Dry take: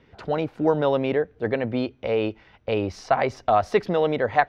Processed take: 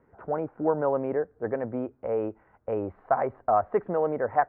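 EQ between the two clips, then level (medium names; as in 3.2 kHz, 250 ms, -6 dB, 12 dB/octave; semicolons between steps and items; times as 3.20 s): low-pass 1.5 kHz 24 dB/octave; distance through air 390 m; bass shelf 330 Hz -9.5 dB; 0.0 dB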